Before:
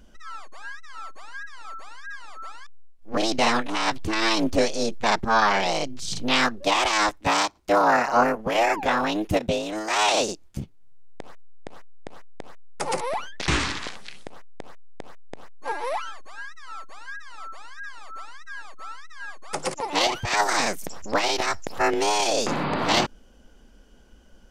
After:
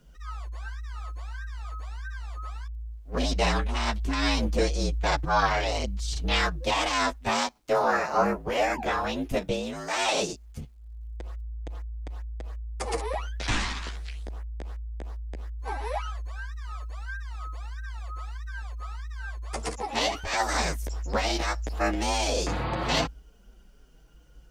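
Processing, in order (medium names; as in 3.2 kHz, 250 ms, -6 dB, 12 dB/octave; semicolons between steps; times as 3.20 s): chorus voices 2, 0.17 Hz, delay 10 ms, depth 4.8 ms; word length cut 12-bit, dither none; frequency shift -56 Hz; trim -1.5 dB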